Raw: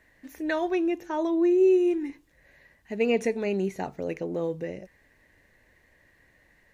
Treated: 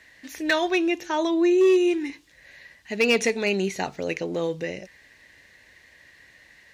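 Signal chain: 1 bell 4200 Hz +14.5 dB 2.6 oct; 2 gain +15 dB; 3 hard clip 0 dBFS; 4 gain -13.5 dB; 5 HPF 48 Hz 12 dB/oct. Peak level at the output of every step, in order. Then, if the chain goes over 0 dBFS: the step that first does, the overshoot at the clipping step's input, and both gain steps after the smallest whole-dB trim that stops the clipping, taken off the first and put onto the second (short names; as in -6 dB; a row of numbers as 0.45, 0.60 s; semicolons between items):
-7.5, +7.5, 0.0, -13.5, -12.0 dBFS; step 2, 7.5 dB; step 2 +7 dB, step 4 -5.5 dB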